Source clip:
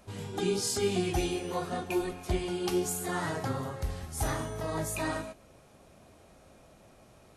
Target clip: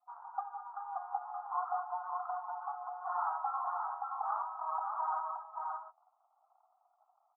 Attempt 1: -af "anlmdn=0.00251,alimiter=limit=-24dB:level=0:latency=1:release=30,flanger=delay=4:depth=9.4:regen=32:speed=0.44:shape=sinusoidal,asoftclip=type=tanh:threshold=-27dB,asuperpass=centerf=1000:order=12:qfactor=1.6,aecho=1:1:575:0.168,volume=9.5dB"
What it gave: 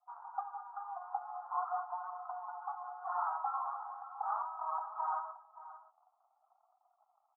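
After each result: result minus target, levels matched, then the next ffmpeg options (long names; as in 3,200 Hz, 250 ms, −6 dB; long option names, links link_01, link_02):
soft clipping: distortion +12 dB; echo-to-direct −11.5 dB
-af "anlmdn=0.00251,alimiter=limit=-24dB:level=0:latency=1:release=30,flanger=delay=4:depth=9.4:regen=32:speed=0.44:shape=sinusoidal,asoftclip=type=tanh:threshold=-20dB,asuperpass=centerf=1000:order=12:qfactor=1.6,aecho=1:1:575:0.168,volume=9.5dB"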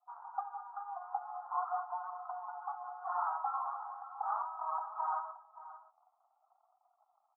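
echo-to-direct −11.5 dB
-af "anlmdn=0.00251,alimiter=limit=-24dB:level=0:latency=1:release=30,flanger=delay=4:depth=9.4:regen=32:speed=0.44:shape=sinusoidal,asoftclip=type=tanh:threshold=-20dB,asuperpass=centerf=1000:order=12:qfactor=1.6,aecho=1:1:575:0.631,volume=9.5dB"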